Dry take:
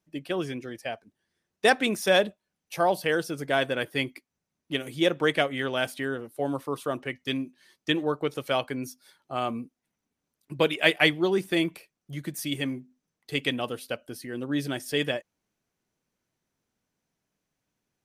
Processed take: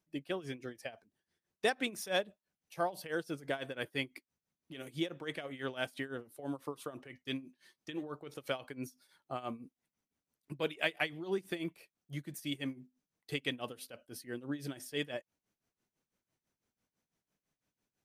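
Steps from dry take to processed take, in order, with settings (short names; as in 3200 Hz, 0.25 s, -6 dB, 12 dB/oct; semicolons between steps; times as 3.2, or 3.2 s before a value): compressor 1.5:1, threshold -36 dBFS, peak gain reduction 8 dB; tremolo 6 Hz, depth 84%; gain -2.5 dB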